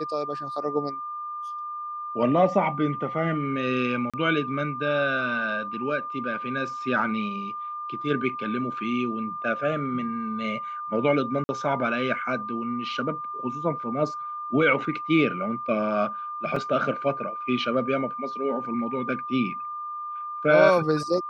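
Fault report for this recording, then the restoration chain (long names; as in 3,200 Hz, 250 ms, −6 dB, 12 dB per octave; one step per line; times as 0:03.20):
whistle 1,200 Hz −31 dBFS
0:04.10–0:04.14: drop-out 36 ms
0:11.44–0:11.49: drop-out 50 ms
0:16.56: drop-out 3.8 ms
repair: notch filter 1,200 Hz, Q 30
repair the gap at 0:04.10, 36 ms
repair the gap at 0:11.44, 50 ms
repair the gap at 0:16.56, 3.8 ms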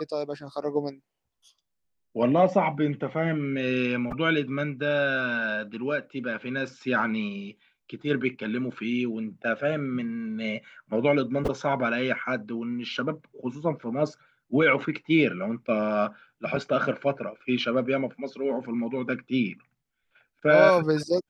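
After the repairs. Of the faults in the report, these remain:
none of them is left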